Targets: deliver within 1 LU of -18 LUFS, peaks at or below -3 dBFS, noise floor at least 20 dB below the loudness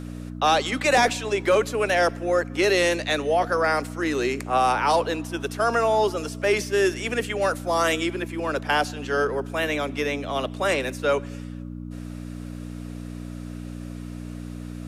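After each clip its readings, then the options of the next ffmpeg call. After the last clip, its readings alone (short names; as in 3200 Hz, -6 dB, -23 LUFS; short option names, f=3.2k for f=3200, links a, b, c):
hum 60 Hz; harmonics up to 300 Hz; hum level -33 dBFS; loudness -23.5 LUFS; peak -7.0 dBFS; loudness target -18.0 LUFS
-> -af "bandreject=f=60:t=h:w=4,bandreject=f=120:t=h:w=4,bandreject=f=180:t=h:w=4,bandreject=f=240:t=h:w=4,bandreject=f=300:t=h:w=4"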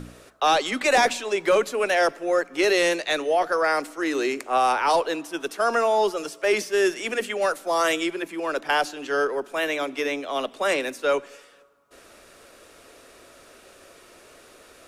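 hum none; loudness -23.5 LUFS; peak -7.0 dBFS; loudness target -18.0 LUFS
-> -af "volume=5.5dB,alimiter=limit=-3dB:level=0:latency=1"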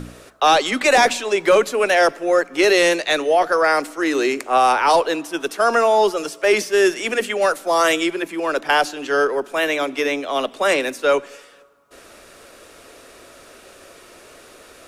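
loudness -18.0 LUFS; peak -3.0 dBFS; noise floor -46 dBFS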